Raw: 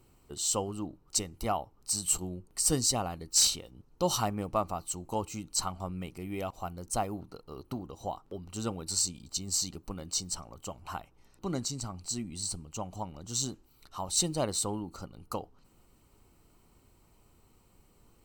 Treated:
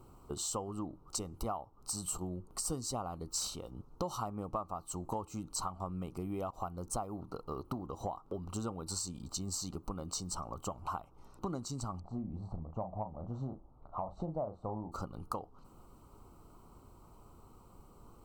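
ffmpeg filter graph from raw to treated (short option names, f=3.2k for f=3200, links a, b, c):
-filter_complex "[0:a]asettb=1/sr,asplit=3[a][b][c];[a]atrim=end=12.004[d];[b]atrim=start=12:end=14.92,asetpts=PTS-STARTPTS,afade=t=in:d=0.004:c=qsin,afade=t=out:st=2.916:d=0.004:c=qsin,lowpass=f=640:t=q:w=2.9,equalizer=f=400:t=o:w=1.5:g=-9,asplit=2[e][f];[f]adelay=37,volume=-8dB[g];[e][g]amix=inputs=2:normalize=0,atrim=end_sample=128772[h];[c]atrim=start=14.916[i];[d][h]acrossfade=d=0.004:c1=hsin:c2=qsin[j];[j][i]acrossfade=d=0.004:c1=qsin:c2=hsin,highshelf=f=1.5k:t=q:w=3:g=-7,bandreject=f=1.7k:w=9.4,acompressor=threshold=-41dB:ratio=6,volume=5.5dB"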